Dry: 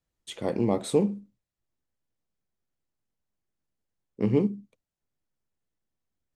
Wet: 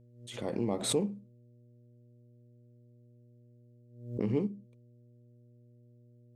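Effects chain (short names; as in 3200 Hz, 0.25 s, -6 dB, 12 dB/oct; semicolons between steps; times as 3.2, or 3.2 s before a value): buzz 120 Hz, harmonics 5, -52 dBFS -8 dB/oct; backwards sustainer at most 85 dB/s; gain -7.5 dB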